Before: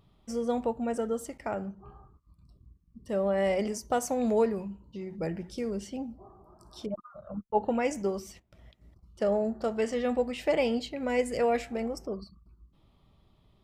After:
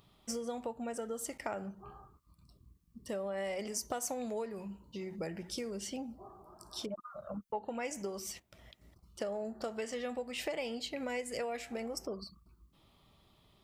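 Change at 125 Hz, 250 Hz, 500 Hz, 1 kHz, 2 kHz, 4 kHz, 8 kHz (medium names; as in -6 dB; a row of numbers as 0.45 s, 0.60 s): -9.0 dB, -10.0 dB, -10.0 dB, -9.0 dB, -5.5 dB, -0.5 dB, +1.5 dB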